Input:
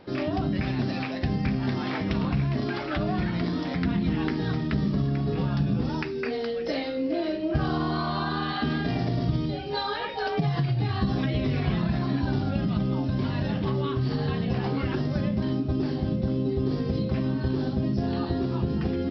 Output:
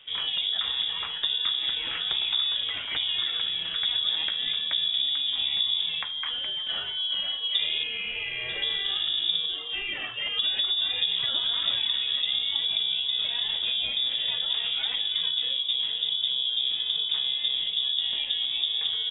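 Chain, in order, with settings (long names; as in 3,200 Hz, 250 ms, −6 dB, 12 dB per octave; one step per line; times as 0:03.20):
0:07.83–0:08.49: high-pass filter 310 Hz 24 dB per octave
voice inversion scrambler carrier 3,600 Hz
level −2 dB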